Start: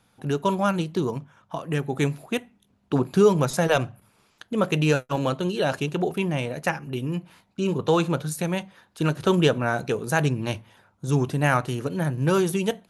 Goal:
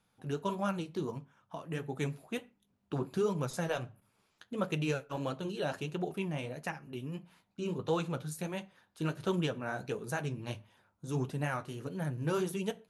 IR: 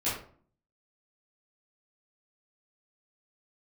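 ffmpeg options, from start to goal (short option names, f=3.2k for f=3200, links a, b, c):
-filter_complex "[0:a]alimiter=limit=-10.5dB:level=0:latency=1:release=468,flanger=delay=4.1:depth=9.7:regen=-43:speed=1.5:shape=triangular,asplit=2[a][b];[1:a]atrim=start_sample=2205,afade=t=out:st=0.19:d=0.01,atrim=end_sample=8820[c];[b][c]afir=irnorm=-1:irlink=0,volume=-27dB[d];[a][d]amix=inputs=2:normalize=0,volume=-7.5dB"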